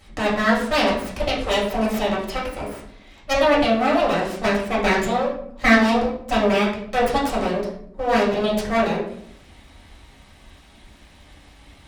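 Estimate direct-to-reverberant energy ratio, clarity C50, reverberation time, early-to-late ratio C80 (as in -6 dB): -6.5 dB, 5.0 dB, 0.70 s, 8.0 dB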